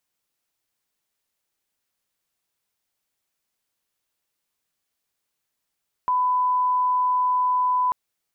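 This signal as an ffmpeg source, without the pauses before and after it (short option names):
-f lavfi -i "sine=f=1000:d=1.84:r=44100,volume=0.06dB"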